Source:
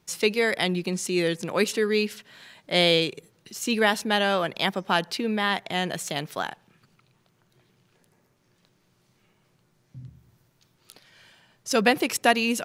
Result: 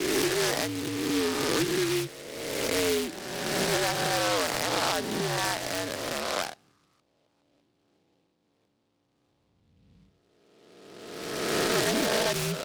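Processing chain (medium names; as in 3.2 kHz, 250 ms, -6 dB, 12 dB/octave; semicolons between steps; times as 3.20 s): reverse spectral sustain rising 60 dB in 1.91 s; level-controlled noise filter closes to 940 Hz, open at -19 dBFS; mistuned SSB -73 Hz 240–2700 Hz; peak limiter -12.5 dBFS, peak gain reduction 9 dB; delay time shaken by noise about 3 kHz, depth 0.11 ms; trim -4.5 dB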